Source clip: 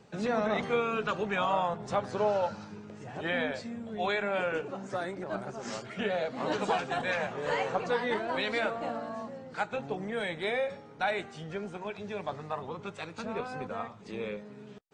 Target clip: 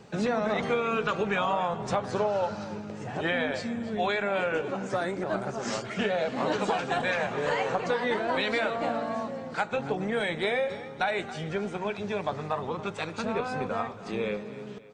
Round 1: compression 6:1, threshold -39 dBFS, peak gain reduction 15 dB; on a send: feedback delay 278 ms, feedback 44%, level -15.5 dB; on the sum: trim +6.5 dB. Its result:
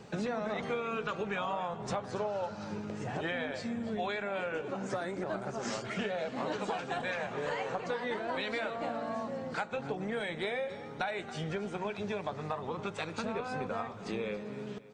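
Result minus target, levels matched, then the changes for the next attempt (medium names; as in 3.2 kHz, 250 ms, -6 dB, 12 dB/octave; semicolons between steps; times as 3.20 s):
compression: peak gain reduction +7.5 dB
change: compression 6:1, threshold -30 dBFS, peak gain reduction 7.5 dB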